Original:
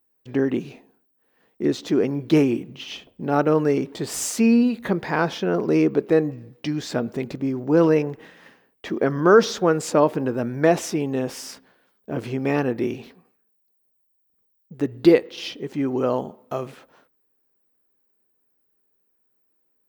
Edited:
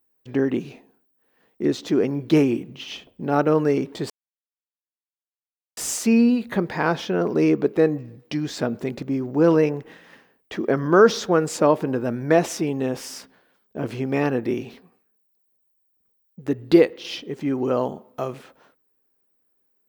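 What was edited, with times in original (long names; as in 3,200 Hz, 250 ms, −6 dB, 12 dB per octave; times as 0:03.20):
0:04.10: splice in silence 1.67 s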